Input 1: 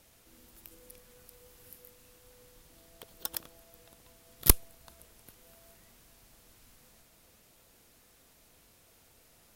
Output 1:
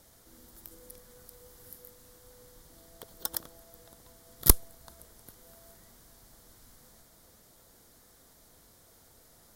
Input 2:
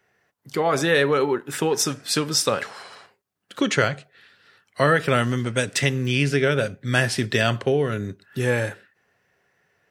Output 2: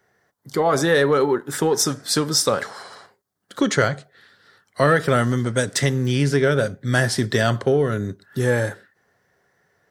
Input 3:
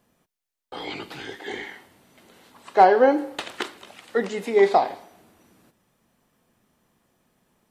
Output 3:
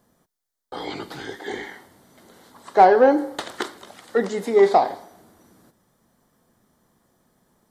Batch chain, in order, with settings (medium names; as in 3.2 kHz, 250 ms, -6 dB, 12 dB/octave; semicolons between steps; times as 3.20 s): peaking EQ 2.6 kHz -13 dB 0.44 oct; in parallel at -6.5 dB: saturation -16 dBFS